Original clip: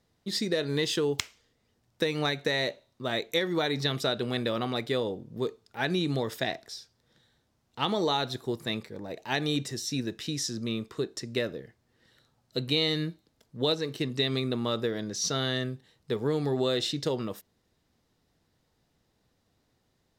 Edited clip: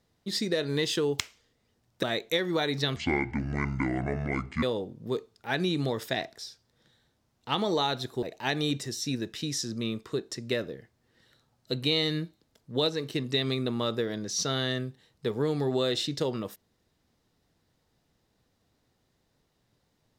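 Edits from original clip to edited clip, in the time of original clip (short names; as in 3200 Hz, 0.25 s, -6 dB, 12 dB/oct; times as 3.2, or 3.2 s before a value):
2.03–3.05 cut
3.98–4.93 speed 57%
8.53–9.08 cut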